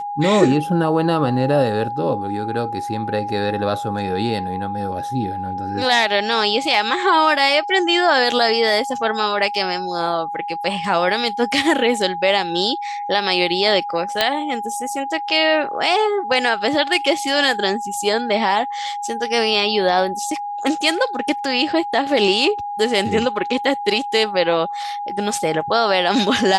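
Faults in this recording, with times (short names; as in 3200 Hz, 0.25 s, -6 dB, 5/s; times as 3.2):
tone 820 Hz -24 dBFS
14.21 pop -1 dBFS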